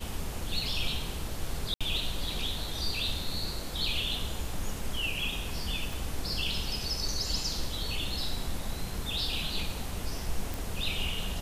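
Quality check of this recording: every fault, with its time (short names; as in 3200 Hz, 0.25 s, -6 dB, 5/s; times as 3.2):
1.74–1.81 gap 66 ms
5.93 pop
10.54 pop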